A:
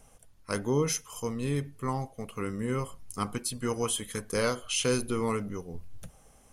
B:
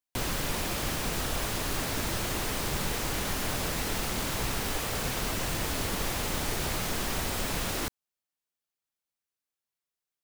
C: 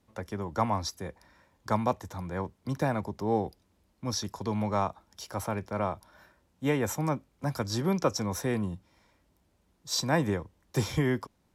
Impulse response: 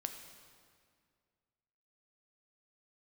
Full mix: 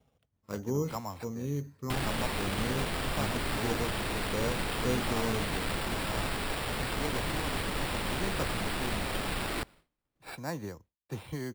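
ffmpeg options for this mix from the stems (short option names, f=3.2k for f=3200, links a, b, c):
-filter_complex "[0:a]highpass=f=61:w=0.5412,highpass=f=61:w=1.3066,tiltshelf=f=900:g=6.5,volume=-9dB[a];[1:a]adelay=1750,volume=-3dB,asplit=2[b][c];[c]volume=-16dB[d];[2:a]lowpass=5.1k,adelay=350,volume=-10.5dB[e];[3:a]atrim=start_sample=2205[f];[d][f]afir=irnorm=-1:irlink=0[g];[a][b][e][g]amix=inputs=4:normalize=0,acompressor=mode=upward:threshold=-50dB:ratio=2.5,agate=range=-33dB:threshold=-50dB:ratio=3:detection=peak,acrusher=samples=7:mix=1:aa=0.000001"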